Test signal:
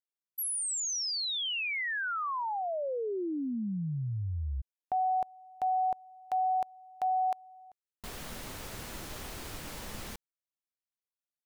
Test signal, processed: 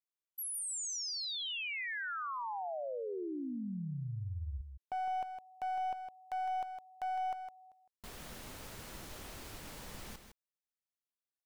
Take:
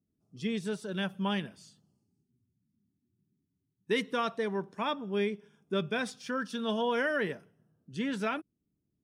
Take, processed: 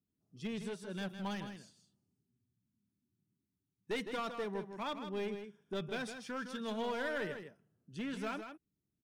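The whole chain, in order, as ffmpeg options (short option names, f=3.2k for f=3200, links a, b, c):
-filter_complex "[0:a]aeval=exprs='clip(val(0),-1,0.0355)':c=same,asplit=2[a][b];[b]aecho=0:1:159:0.376[c];[a][c]amix=inputs=2:normalize=0,volume=-6.5dB"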